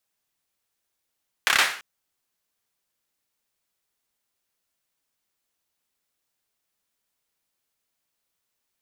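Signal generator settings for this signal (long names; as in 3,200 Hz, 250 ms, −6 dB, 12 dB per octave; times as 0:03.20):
synth clap length 0.34 s, bursts 5, apart 29 ms, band 1,700 Hz, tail 0.44 s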